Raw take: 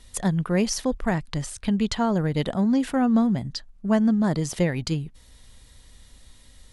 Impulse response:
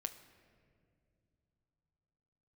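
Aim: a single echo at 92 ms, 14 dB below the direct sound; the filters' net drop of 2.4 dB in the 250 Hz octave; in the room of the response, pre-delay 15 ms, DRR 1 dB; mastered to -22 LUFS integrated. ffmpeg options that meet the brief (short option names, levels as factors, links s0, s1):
-filter_complex "[0:a]equalizer=f=250:t=o:g=-3,aecho=1:1:92:0.2,asplit=2[s0][s1];[1:a]atrim=start_sample=2205,adelay=15[s2];[s1][s2]afir=irnorm=-1:irlink=0,volume=1.12[s3];[s0][s3]amix=inputs=2:normalize=0,volume=1.19"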